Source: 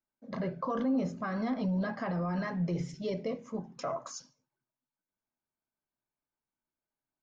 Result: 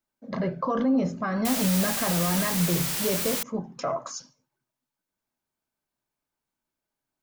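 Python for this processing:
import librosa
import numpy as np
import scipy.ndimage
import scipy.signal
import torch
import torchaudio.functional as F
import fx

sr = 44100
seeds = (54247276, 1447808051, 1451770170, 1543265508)

y = fx.quant_dither(x, sr, seeds[0], bits=6, dither='triangular', at=(1.45, 3.43))
y = F.gain(torch.from_numpy(y), 6.5).numpy()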